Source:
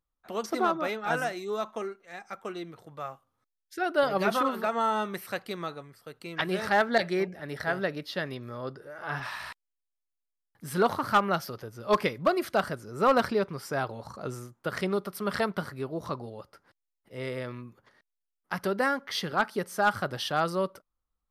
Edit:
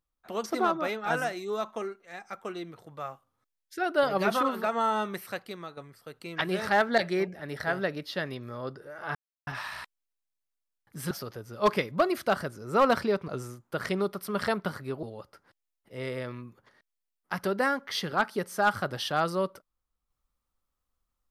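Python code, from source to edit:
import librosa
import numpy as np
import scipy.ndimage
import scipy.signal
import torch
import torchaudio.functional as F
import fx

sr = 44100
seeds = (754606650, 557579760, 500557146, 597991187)

y = fx.edit(x, sr, fx.fade_out_to(start_s=5.11, length_s=0.66, floor_db=-8.5),
    fx.insert_silence(at_s=9.15, length_s=0.32),
    fx.cut(start_s=10.79, length_s=0.59),
    fx.cut(start_s=13.55, length_s=0.65),
    fx.cut(start_s=15.95, length_s=0.28), tone=tone)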